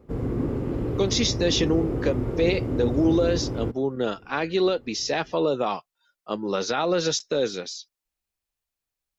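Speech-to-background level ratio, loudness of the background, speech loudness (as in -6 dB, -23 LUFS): 3.0 dB, -28.5 LUFS, -25.5 LUFS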